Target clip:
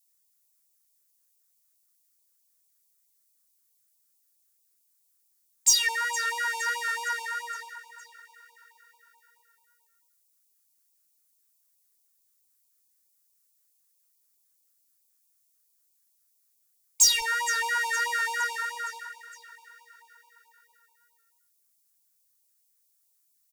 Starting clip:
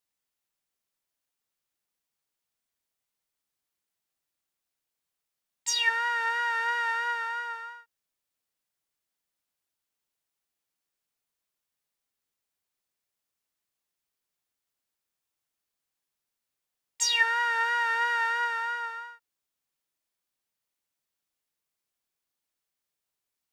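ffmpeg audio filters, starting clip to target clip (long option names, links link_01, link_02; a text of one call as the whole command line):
ffmpeg -i in.wav -af "tiltshelf=frequency=1400:gain=-10,aecho=1:1:463|926|1389|1852|2315:0.141|0.0777|0.0427|0.0235|0.0129,aeval=exprs='0.631*sin(PI/2*2.24*val(0)/0.631)':channel_layout=same,equalizer=frequency=2900:width=0.78:gain=-14.5,afftfilt=real='re*(1-between(b*sr/1024,650*pow(1600/650,0.5+0.5*sin(2*PI*4.6*pts/sr))/1.41,650*pow(1600/650,0.5+0.5*sin(2*PI*4.6*pts/sr))*1.41))':imag='im*(1-between(b*sr/1024,650*pow(1600/650,0.5+0.5*sin(2*PI*4.6*pts/sr))/1.41,650*pow(1600/650,0.5+0.5*sin(2*PI*4.6*pts/sr))*1.41))':win_size=1024:overlap=0.75,volume=-3dB" out.wav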